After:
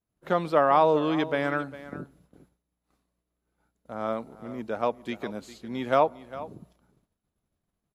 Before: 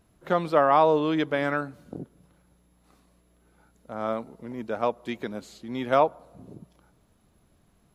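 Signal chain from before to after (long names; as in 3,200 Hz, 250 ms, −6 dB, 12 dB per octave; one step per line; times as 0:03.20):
single-tap delay 403 ms −16 dB
downward expander −51 dBFS
level −1 dB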